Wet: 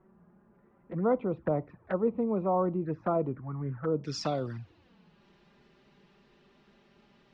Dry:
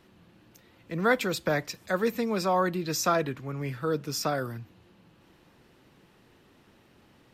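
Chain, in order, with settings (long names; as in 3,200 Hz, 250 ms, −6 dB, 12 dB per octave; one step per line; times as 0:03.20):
low-pass filter 1,400 Hz 24 dB per octave, from 0:04.04 5,700 Hz
flanger swept by the level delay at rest 5.5 ms, full sweep at −26 dBFS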